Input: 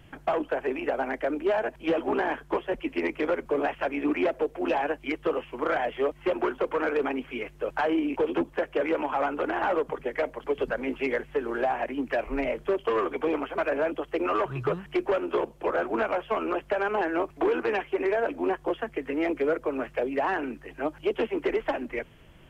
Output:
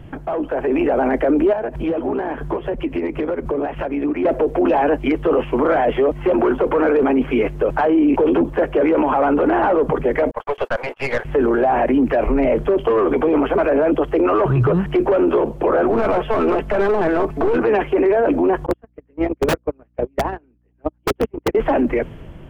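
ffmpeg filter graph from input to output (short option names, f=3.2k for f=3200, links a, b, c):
-filter_complex "[0:a]asettb=1/sr,asplit=3[a][b][c];[a]atrim=end=1.534[d];[b]atrim=start=1.53:end=4.25,asetpts=PTS-STARTPTS,afade=t=in:d=0.004:c=qsin,afade=t=out:st=2.716:d=0.004:c=qsin,equalizer=f=90:t=o:w=1.5:g=6,acompressor=threshold=-40dB:ratio=6:attack=3.2:release=140:knee=1:detection=peak[e];[c]atrim=start=4.246[f];[d][e]acrossfade=d=0.004:c1=hsin:c2=qsin[g];[g][f]acrossfade=d=0.004:c1=qsin:c2=hsin,asettb=1/sr,asplit=3[h][i][j];[h]atrim=end=10.314[k];[i]atrim=start=10.31:end=11.25,asetpts=PTS-STARTPTS,afade=t=in:d=0.004:c=qsin,afade=t=out:st=0.936:d=0.004:c=qsin,highpass=f=650:w=0.5412,highpass=f=650:w=1.3066,aeval=exprs='(tanh(28.2*val(0)+0.5)-tanh(0.5))/28.2':c=same,agate=range=-46dB:threshold=-49dB:ratio=16:release=100:detection=peak[l];[j]atrim=start=11.246[m];[k][l]acrossfade=d=0.004:c1=hsin:c2=qsin[n];[n][m]acrossfade=d=0.004:c1=qsin:c2=hsin,asettb=1/sr,asplit=3[o][p][q];[o]atrim=end=15.894[r];[p]atrim=start=15.89:end=17.58,asetpts=PTS-STARTPTS,afade=t=in:d=0.004:c=qsin,afade=t=out:st=1.686:d=0.004:c=qsin,aecho=1:1:4.6:0.43,atrim=end_sample=74529,aeval=exprs='clip(val(0),-1,0.0316)':c=same[s];[q]atrim=start=17.576[t];[r][s]acrossfade=d=0.004:c1=hsin:c2=qsin[u];[u][t]acrossfade=d=0.004:c1=qsin:c2=hsin,asettb=1/sr,asplit=3[v][w][x];[v]atrim=end=18.664[y];[w]atrim=start=18.66:end=21.55,asetpts=PTS-STARTPTS,afade=t=in:d=0.004:c=qsin,afade=t=out:st=2.886:d=0.004:c=qsin,aeval=exprs='val(0)+0.0141*(sin(2*PI*60*n/s)+sin(2*PI*2*60*n/s)/2+sin(2*PI*3*60*n/s)/3+sin(2*PI*4*60*n/s)/4+sin(2*PI*5*60*n/s)/5)':c=same,agate=range=-46dB:threshold=-24dB:ratio=16:release=100:detection=peak,aeval=exprs='(mod(15*val(0)+1,2)-1)/15':c=same[z];[x]atrim=start=21.546[aa];[y][z]acrossfade=d=0.004:c1=hsin:c2=qsin[ab];[ab][aa]acrossfade=d=0.004:c1=qsin:c2=hsin,tiltshelf=f=1.3k:g=7.5,alimiter=level_in=0.5dB:limit=-24dB:level=0:latency=1:release=19,volume=-0.5dB,dynaudnorm=f=190:g=7:m=7dB,volume=8dB"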